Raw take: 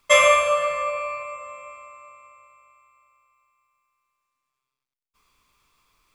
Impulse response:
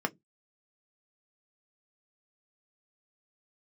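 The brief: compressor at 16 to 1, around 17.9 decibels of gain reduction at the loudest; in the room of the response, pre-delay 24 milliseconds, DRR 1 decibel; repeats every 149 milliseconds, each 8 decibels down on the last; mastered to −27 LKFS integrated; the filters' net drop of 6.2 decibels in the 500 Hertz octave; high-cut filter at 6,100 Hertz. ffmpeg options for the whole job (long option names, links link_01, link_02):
-filter_complex "[0:a]lowpass=6100,equalizer=frequency=500:width_type=o:gain=-7.5,acompressor=threshold=-31dB:ratio=16,aecho=1:1:149|298|447|596|745:0.398|0.159|0.0637|0.0255|0.0102,asplit=2[link_01][link_02];[1:a]atrim=start_sample=2205,adelay=24[link_03];[link_02][link_03]afir=irnorm=-1:irlink=0,volume=-8dB[link_04];[link_01][link_04]amix=inputs=2:normalize=0,volume=7.5dB"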